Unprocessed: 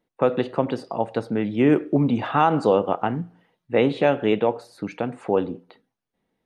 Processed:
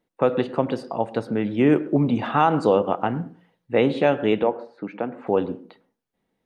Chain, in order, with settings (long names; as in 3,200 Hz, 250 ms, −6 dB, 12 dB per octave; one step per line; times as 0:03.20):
0:04.43–0:05.27: band-pass filter 210–2,100 Hz
on a send: convolution reverb RT60 0.35 s, pre-delay 99 ms, DRR 19 dB